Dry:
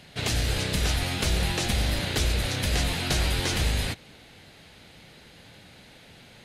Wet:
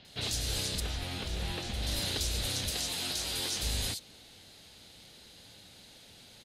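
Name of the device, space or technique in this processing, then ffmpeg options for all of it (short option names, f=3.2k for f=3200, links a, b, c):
over-bright horn tweeter: -filter_complex "[0:a]highshelf=f=2.9k:t=q:w=1.5:g=8.5,alimiter=limit=-12.5dB:level=0:latency=1:release=371,asettb=1/sr,asplit=3[a][b][c];[a]atrim=end=0.754[d];[b]atrim=start=0.75:end=1.82,asetpts=PTS-STARTPTS,afade=t=in:d=0.004:c=qsin,afade=t=out:st=1.066:d=0.004:c=qsin,acrossover=split=3400[e][f];[f]acompressor=threshold=-40dB:ratio=4:attack=1:release=60[g];[e][g]amix=inputs=2:normalize=0[h];[c]atrim=start=1.816[i];[d][h]acrossfade=d=0.004:c1=hsin:c2=qsin[j];[j][i]acrossfade=d=0.004:c1=qsin:c2=hsin,asettb=1/sr,asplit=3[k][l][m];[k]atrim=end=2.704[n];[l]atrim=start=2.7:end=3.63,asetpts=PTS-STARTPTS,afade=t=in:d=0.004:c=qsin,afade=t=out:st=0.926:d=0.004:c=qsin,highpass=f=220:p=1[o];[m]atrim=start=3.626[p];[n][o]acrossfade=d=0.004:c1=hsin:c2=qsin[q];[q][p]acrossfade=d=0.004:c1=qsin:c2=hsin,equalizer=f=150:t=o:w=0.35:g=-5,acrossover=split=4000[r][s];[s]adelay=50[t];[r][t]amix=inputs=2:normalize=0,volume=-6.5dB"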